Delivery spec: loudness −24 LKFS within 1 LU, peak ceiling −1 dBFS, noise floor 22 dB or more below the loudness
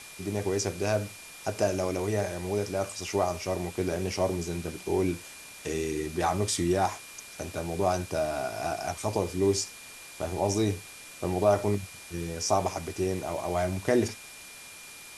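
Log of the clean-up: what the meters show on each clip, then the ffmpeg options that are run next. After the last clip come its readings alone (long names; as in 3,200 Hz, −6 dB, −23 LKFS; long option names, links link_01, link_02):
interfering tone 2,400 Hz; level of the tone −49 dBFS; background noise floor −46 dBFS; target noise floor −52 dBFS; integrated loudness −30.0 LKFS; sample peak −10.5 dBFS; target loudness −24.0 LKFS
→ -af "bandreject=frequency=2400:width=30"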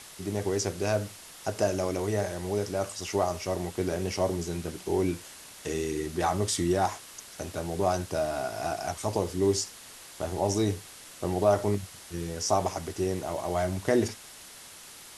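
interfering tone none found; background noise floor −48 dBFS; target noise floor −52 dBFS
→ -af "afftdn=noise_reduction=6:noise_floor=-48"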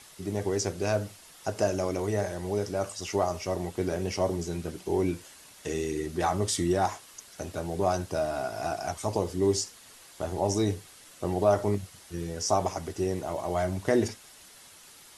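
background noise floor −52 dBFS; integrated loudness −30.0 LKFS; sample peak −10.5 dBFS; target loudness −24.0 LKFS
→ -af "volume=6dB"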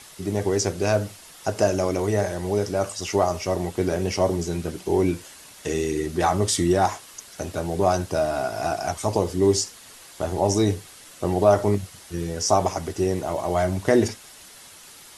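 integrated loudness −24.0 LKFS; sample peak −4.5 dBFS; background noise floor −46 dBFS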